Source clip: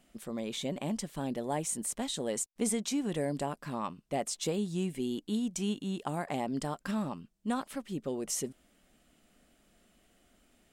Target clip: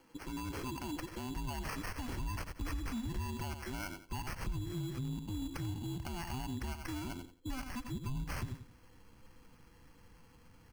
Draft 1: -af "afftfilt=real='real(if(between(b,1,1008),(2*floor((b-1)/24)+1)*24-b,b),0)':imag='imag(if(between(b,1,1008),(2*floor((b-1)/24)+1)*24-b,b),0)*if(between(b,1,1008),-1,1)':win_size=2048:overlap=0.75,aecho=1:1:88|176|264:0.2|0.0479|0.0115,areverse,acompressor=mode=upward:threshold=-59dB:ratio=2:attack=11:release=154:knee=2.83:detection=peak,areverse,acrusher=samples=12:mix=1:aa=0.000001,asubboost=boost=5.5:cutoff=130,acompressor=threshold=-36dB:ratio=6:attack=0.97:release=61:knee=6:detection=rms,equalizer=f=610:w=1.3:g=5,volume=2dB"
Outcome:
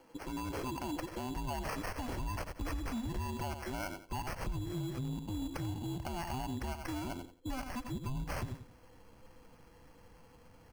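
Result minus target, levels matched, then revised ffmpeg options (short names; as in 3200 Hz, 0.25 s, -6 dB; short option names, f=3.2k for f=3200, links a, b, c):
500 Hz band +4.0 dB
-af "afftfilt=real='real(if(between(b,1,1008),(2*floor((b-1)/24)+1)*24-b,b),0)':imag='imag(if(between(b,1,1008),(2*floor((b-1)/24)+1)*24-b,b),0)*if(between(b,1,1008),-1,1)':win_size=2048:overlap=0.75,aecho=1:1:88|176|264:0.2|0.0479|0.0115,areverse,acompressor=mode=upward:threshold=-59dB:ratio=2:attack=11:release=154:knee=2.83:detection=peak,areverse,acrusher=samples=12:mix=1:aa=0.000001,asubboost=boost=5.5:cutoff=130,acompressor=threshold=-36dB:ratio=6:attack=0.97:release=61:knee=6:detection=rms,equalizer=f=610:w=1.3:g=-4,volume=2dB"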